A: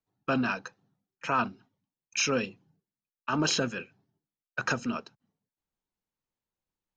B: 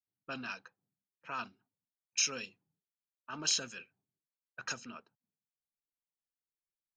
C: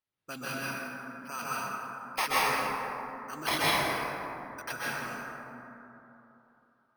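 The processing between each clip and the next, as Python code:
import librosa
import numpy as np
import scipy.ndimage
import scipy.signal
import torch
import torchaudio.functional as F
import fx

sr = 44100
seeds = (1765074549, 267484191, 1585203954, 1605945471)

y1 = librosa.effects.preemphasis(x, coef=0.9, zi=[0.0])
y1 = fx.env_lowpass(y1, sr, base_hz=450.0, full_db=-36.0)
y1 = y1 * 10.0 ** (2.0 / 20.0)
y2 = np.repeat(y1[::6], 6)[:len(y1)]
y2 = fx.rev_plate(y2, sr, seeds[0], rt60_s=3.2, hf_ratio=0.35, predelay_ms=115, drr_db=-8.0)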